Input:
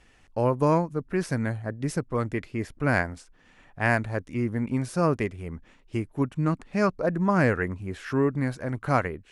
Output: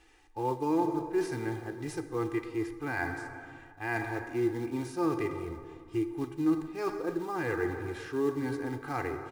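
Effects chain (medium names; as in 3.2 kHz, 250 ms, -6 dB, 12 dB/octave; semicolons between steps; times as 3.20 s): harmonic-percussive split percussive -10 dB; in parallel at -7 dB: short-mantissa float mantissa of 2-bit; on the sum: bass shelf 500 Hz -8.5 dB; plate-style reverb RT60 2.3 s, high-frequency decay 0.55×, DRR 9 dB; reverse; compression 6:1, threshold -29 dBFS, peak gain reduction 9.5 dB; reverse; comb 2.5 ms, depth 84%; small resonant body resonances 320/890/3800 Hz, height 12 dB, ringing for 45 ms; trim -3.5 dB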